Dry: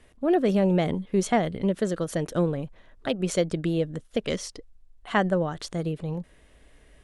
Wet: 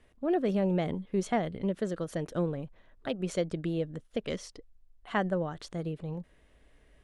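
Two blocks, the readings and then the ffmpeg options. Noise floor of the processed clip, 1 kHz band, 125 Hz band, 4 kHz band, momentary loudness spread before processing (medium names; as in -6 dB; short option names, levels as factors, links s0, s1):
-63 dBFS, -6.0 dB, -6.0 dB, -8.0 dB, 12 LU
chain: -af "highshelf=f=5200:g=-6.5,volume=0.501"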